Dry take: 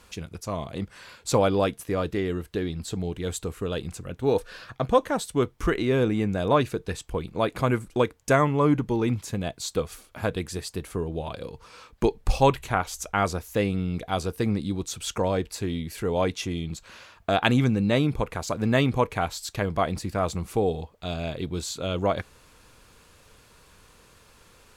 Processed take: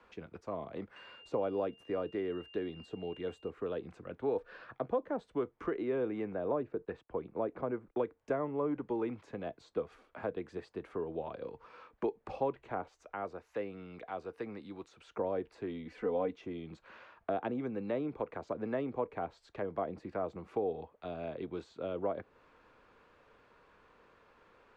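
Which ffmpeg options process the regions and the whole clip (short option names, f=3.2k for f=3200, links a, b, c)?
-filter_complex "[0:a]asettb=1/sr,asplit=3[a][b][c];[a]atrim=end=0.964[d];[b]atrim=start=0.96:end=3.5,asetpts=PTS-STARTPTS,afade=t=in:d=0.004:c=qsin,afade=t=out:st=2.536:d=0.004:c=qsin,highshelf=f=5k:g=7,aeval=exprs='val(0)+0.01*sin(2*PI*2800*n/s)':c=same[e];[c]atrim=start=3.496[f];[d][e]acrossfade=d=0.004:c1=hsin:c2=qsin[g];[g][f]acrossfade=d=0.004:c1=qsin:c2=hsin,asettb=1/sr,asplit=3[h][i][j];[h]atrim=end=6.324[k];[i]atrim=start=6.32:end=7.97,asetpts=PTS-STARTPTS,afade=t=in:d=0.004:c=qsin,afade=t=out:st=1.646:d=0.004:c=qsin,lowpass=f=1.4k:p=1,agate=range=-19dB:threshold=-48dB:ratio=16:release=100:detection=peak[l];[j]atrim=start=7.966[m];[k][l]acrossfade=d=0.004:c1=hsin:c2=qsin[n];[n][m]acrossfade=d=0.004:c1=qsin:c2=hsin,asettb=1/sr,asplit=3[o][p][q];[o]atrim=end=12.874[r];[p]atrim=start=12.87:end=15.16,asetpts=PTS-STARTPTS,afade=t=in:d=0.004:c=qsin,afade=t=out:st=2.286:d=0.004:c=qsin,lowshelf=f=450:g=-12,bandreject=f=3.3k:w=19,acompressor=mode=upward:threshold=-36dB:ratio=2.5:attack=3.2:release=140:knee=2.83:detection=peak[s];[q]atrim=start=15.156[t];[r][s]acrossfade=d=0.004:c1=hsin:c2=qsin[u];[u][t]acrossfade=d=0.004:c1=qsin:c2=hsin,asettb=1/sr,asplit=3[v][w][x];[v]atrim=end=15.854[y];[w]atrim=start=15.85:end=16.36,asetpts=PTS-STARTPTS,afade=t=in:d=0.004:c=qsin,afade=t=out:st=0.506:d=0.004:c=qsin,lowpass=8.4k,aecho=1:1:4:0.82,atrim=end_sample=22491[z];[x]atrim=start=16.356[aa];[y][z]acrossfade=d=0.004:c1=hsin:c2=qsin[ab];[ab][aa]acrossfade=d=0.004:c1=qsin:c2=hsin,acrossover=split=83|310|630[ac][ad][ae][af];[ac]acompressor=threshold=-50dB:ratio=4[ag];[ad]acompressor=threshold=-34dB:ratio=4[ah];[ae]acompressor=threshold=-28dB:ratio=4[ai];[af]acompressor=threshold=-40dB:ratio=4[aj];[ag][ah][ai][aj]amix=inputs=4:normalize=0,lowpass=4.1k,acrossover=split=240 2200:gain=0.224 1 0.2[ak][al][am];[ak][al][am]amix=inputs=3:normalize=0,volume=-4dB"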